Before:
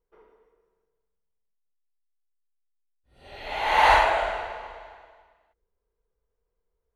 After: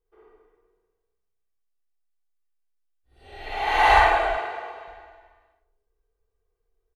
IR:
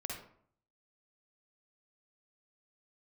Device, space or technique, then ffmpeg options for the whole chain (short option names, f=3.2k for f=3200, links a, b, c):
microphone above a desk: -filter_complex "[0:a]aecho=1:1:2.6:0.52[a];[1:a]atrim=start_sample=2205[b];[a][b]afir=irnorm=-1:irlink=0,asettb=1/sr,asplit=3[c][d][e];[c]atrim=end=4.374[f];[d]atrim=start=4.37:end=4.88,asetpts=PTS-STARTPTS,afade=t=in:d=0.004:c=qsin,afade=t=out:st=0.506:d=0.004:c=qsin,highpass=170[g];[e]atrim=start=4.876[h];[f][g]acrossfade=d=0.004:c1=hsin:c2=qsin[i];[i][h]acrossfade=d=0.004:c1=qsin:c2=hsin"